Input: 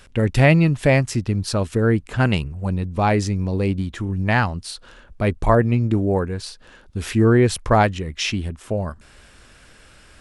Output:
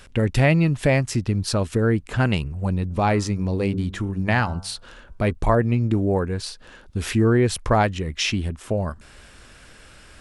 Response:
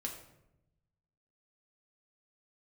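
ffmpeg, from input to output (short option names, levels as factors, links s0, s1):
-filter_complex "[0:a]asplit=3[s0][s1][s2];[s0]afade=t=out:st=2.89:d=0.02[s3];[s1]bandreject=f=96.48:t=h:w=4,bandreject=f=192.96:t=h:w=4,bandreject=f=289.44:t=h:w=4,bandreject=f=385.92:t=h:w=4,bandreject=f=482.4:t=h:w=4,bandreject=f=578.88:t=h:w=4,bandreject=f=675.36:t=h:w=4,bandreject=f=771.84:t=h:w=4,bandreject=f=868.32:t=h:w=4,bandreject=f=964.8:t=h:w=4,bandreject=f=1061.28:t=h:w=4,bandreject=f=1157.76:t=h:w=4,bandreject=f=1254.24:t=h:w=4,bandreject=f=1350.72:t=h:w=4,bandreject=f=1447.2:t=h:w=4,bandreject=f=1543.68:t=h:w=4,afade=t=in:st=2.89:d=0.02,afade=t=out:st=5.3:d=0.02[s4];[s2]afade=t=in:st=5.3:d=0.02[s5];[s3][s4][s5]amix=inputs=3:normalize=0,acompressor=threshold=0.0708:ratio=1.5,volume=1.19"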